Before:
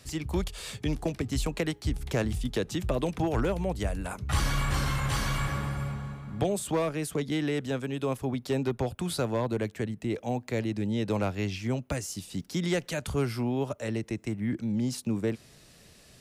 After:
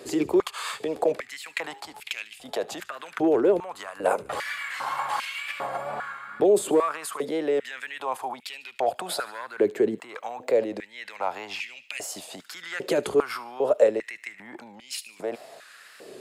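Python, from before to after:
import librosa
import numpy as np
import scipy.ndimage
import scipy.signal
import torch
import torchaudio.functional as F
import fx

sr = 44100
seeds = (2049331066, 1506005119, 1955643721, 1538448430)

p1 = fx.tilt_shelf(x, sr, db=5.0, hz=1400.0)
p2 = fx.notch(p1, sr, hz=5800.0, q=8.1)
p3 = fx.over_compress(p2, sr, threshold_db=-30.0, ratio=-0.5)
p4 = p2 + (p3 * 10.0 ** (3.0 / 20.0))
p5 = fx.wow_flutter(p4, sr, seeds[0], rate_hz=2.1, depth_cents=55.0)
p6 = p5 + fx.echo_wet_highpass(p5, sr, ms=74, feedback_pct=54, hz=2100.0, wet_db=-17.5, dry=0)
p7 = fx.filter_held_highpass(p6, sr, hz=2.5, low_hz=390.0, high_hz=2500.0)
y = p7 * 10.0 ** (-3.5 / 20.0)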